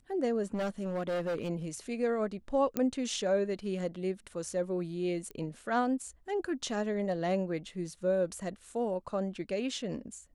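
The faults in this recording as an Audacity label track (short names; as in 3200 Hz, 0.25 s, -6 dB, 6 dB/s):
0.540000	1.500000	clipped -29.5 dBFS
2.770000	2.770000	pop -17 dBFS
5.310000	5.310000	pop -29 dBFS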